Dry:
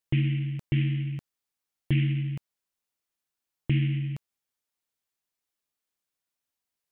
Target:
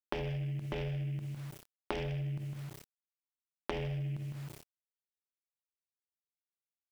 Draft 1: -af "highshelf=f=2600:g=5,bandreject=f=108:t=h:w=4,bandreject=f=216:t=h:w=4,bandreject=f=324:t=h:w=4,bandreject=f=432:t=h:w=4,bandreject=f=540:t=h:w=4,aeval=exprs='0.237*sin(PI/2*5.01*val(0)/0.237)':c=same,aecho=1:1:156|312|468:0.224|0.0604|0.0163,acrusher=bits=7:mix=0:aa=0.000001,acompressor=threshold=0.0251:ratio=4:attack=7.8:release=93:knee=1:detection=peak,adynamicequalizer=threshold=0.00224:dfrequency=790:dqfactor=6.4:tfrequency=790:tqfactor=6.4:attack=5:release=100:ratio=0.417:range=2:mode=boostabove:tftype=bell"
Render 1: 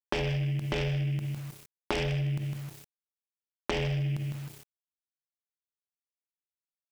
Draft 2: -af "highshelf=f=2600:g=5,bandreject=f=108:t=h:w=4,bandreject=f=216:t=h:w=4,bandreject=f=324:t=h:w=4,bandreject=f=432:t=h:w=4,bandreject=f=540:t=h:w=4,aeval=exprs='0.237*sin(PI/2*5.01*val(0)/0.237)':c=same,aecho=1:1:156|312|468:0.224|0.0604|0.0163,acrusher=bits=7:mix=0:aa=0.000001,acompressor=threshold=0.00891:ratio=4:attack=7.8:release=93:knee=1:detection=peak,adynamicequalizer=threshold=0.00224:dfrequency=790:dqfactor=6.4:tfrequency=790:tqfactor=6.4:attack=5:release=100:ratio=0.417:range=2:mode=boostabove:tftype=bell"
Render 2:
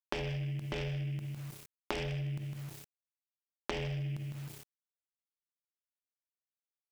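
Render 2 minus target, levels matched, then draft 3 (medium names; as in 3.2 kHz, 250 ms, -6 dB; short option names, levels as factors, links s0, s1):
4 kHz band +4.0 dB
-af "highshelf=f=2600:g=-4.5,bandreject=f=108:t=h:w=4,bandreject=f=216:t=h:w=4,bandreject=f=324:t=h:w=4,bandreject=f=432:t=h:w=4,bandreject=f=540:t=h:w=4,aeval=exprs='0.237*sin(PI/2*5.01*val(0)/0.237)':c=same,aecho=1:1:156|312|468:0.224|0.0604|0.0163,acrusher=bits=7:mix=0:aa=0.000001,acompressor=threshold=0.00891:ratio=4:attack=7.8:release=93:knee=1:detection=peak,adynamicequalizer=threshold=0.00224:dfrequency=790:dqfactor=6.4:tfrequency=790:tqfactor=6.4:attack=5:release=100:ratio=0.417:range=2:mode=boostabove:tftype=bell"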